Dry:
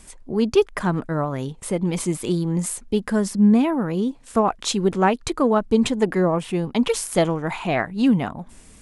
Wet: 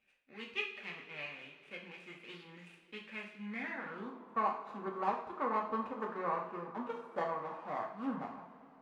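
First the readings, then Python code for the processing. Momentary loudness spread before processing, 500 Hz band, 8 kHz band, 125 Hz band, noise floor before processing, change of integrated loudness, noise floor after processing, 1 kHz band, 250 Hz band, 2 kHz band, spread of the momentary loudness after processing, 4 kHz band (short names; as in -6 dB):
7 LU, -20.5 dB, under -40 dB, -29.0 dB, -48 dBFS, -18.0 dB, -62 dBFS, -10.5 dB, -25.0 dB, -11.5 dB, 15 LU, -18.5 dB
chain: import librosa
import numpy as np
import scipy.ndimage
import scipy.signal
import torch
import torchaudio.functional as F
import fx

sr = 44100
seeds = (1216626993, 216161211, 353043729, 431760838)

y = scipy.signal.medfilt(x, 41)
y = fx.rev_double_slope(y, sr, seeds[0], early_s=0.49, late_s=3.8, knee_db=-18, drr_db=-1.0)
y = fx.filter_sweep_bandpass(y, sr, from_hz=2500.0, to_hz=1100.0, start_s=3.42, end_s=4.13, q=5.2)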